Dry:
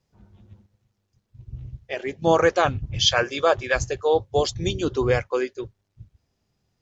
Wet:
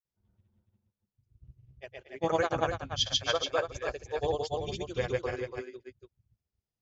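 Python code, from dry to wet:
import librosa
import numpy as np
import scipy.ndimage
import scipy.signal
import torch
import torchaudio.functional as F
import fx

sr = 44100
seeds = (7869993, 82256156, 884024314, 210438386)

y = fx.granulator(x, sr, seeds[0], grain_ms=100.0, per_s=20.0, spray_ms=166.0, spread_st=0)
y = y + 10.0 ** (-4.5 / 20.0) * np.pad(y, (int(287 * sr / 1000.0), 0))[:len(y)]
y = fx.upward_expand(y, sr, threshold_db=-40.0, expansion=1.5)
y = y * 10.0 ** (-8.0 / 20.0)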